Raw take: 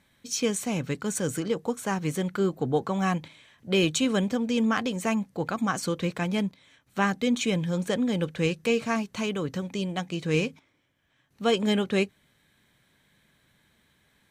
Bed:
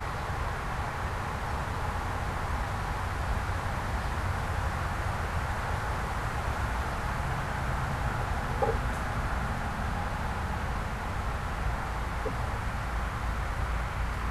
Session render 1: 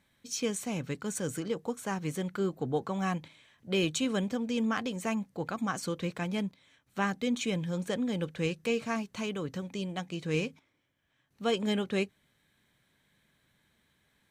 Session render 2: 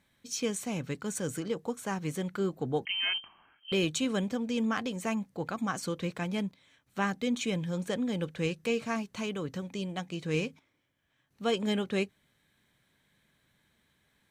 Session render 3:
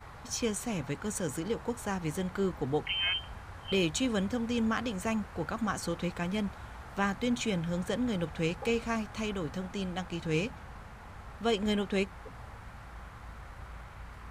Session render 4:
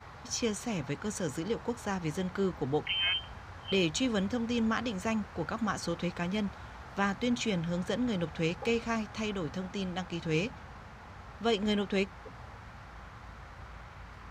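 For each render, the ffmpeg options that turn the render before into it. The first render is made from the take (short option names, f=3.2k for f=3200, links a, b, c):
-af "volume=-5.5dB"
-filter_complex "[0:a]asettb=1/sr,asplit=3[a][b][c];[a]atrim=end=2.854[d];[b]atrim=start=2.85:end=3.72,asetpts=PTS-STARTPTS,afade=t=in:d=0.004:c=qsin,afade=t=out:st=0.866:d=0.004:c=qsin,lowpass=f=2.8k:t=q:w=0.5098,lowpass=f=2.8k:t=q:w=0.6013,lowpass=f=2.8k:t=q:w=0.9,lowpass=f=2.8k:t=q:w=2.563,afreqshift=-3300[e];[c]atrim=start=3.716[f];[d][e]acrossfade=d=0.004:c1=hsin:c2=qsin[g];[g][f]acrossfade=d=0.004:c1=qsin:c2=hsin"
-filter_complex "[1:a]volume=-14.5dB[a];[0:a][a]amix=inputs=2:normalize=0"
-af "highpass=59,highshelf=f=7.4k:t=q:w=1.5:g=-7"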